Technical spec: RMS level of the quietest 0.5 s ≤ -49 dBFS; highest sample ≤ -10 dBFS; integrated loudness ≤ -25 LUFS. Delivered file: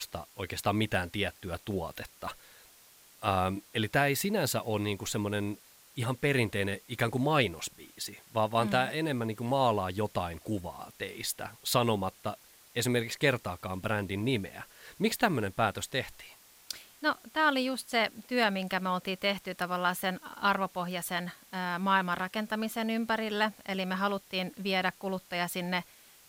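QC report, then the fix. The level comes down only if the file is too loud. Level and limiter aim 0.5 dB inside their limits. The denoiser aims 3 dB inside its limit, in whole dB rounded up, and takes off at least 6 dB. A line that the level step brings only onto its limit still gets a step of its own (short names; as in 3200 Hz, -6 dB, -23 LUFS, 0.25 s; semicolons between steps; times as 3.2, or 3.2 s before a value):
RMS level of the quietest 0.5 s -58 dBFS: OK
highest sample -12.5 dBFS: OK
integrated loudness -31.5 LUFS: OK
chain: none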